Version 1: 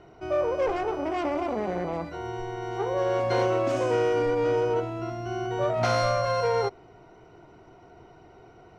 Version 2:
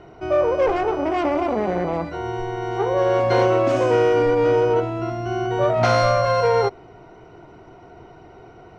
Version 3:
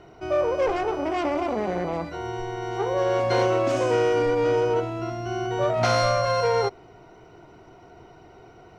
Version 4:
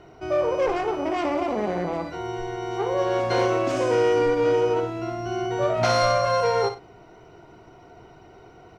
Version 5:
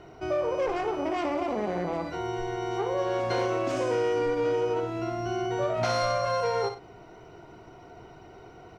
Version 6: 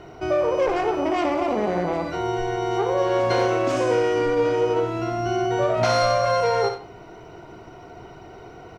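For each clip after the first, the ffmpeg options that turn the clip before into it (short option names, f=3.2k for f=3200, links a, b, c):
-af "highshelf=f=6.9k:g=-9,volume=7dB"
-af "highshelf=f=4k:g=9,volume=-4.5dB"
-af "aecho=1:1:57|98:0.335|0.106"
-af "acompressor=threshold=-28dB:ratio=2"
-filter_complex "[0:a]asplit=2[a][b];[b]adelay=90,highpass=300,lowpass=3.4k,asoftclip=type=hard:threshold=-23dB,volume=-10dB[c];[a][c]amix=inputs=2:normalize=0,volume=6dB"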